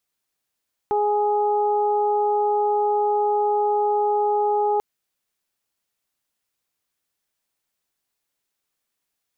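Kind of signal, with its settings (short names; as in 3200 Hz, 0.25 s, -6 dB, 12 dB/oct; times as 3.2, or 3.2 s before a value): steady additive tone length 3.89 s, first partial 416 Hz, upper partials 1/-18 dB, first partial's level -21 dB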